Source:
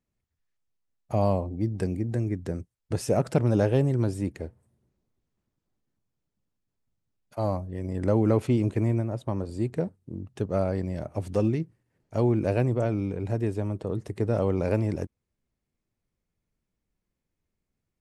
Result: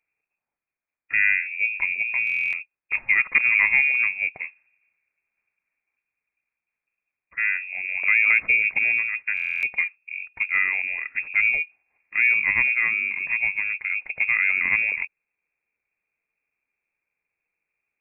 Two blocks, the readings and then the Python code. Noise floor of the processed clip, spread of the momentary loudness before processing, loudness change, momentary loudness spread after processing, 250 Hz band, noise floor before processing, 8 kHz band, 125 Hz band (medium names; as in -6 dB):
under -85 dBFS, 11 LU, +7.0 dB, 11 LU, under -25 dB, -84 dBFS, no reading, under -25 dB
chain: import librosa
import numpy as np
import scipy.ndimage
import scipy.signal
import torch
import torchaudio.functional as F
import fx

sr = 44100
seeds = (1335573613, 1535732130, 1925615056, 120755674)

y = scipy.signal.sosfilt(scipy.signal.butter(2, 110.0, 'highpass', fs=sr, output='sos'), x)
y = fx.freq_invert(y, sr, carrier_hz=2600)
y = fx.buffer_glitch(y, sr, at_s=(2.25, 9.35), block=1024, repeats=11)
y = F.gain(torch.from_numpy(y), 4.0).numpy()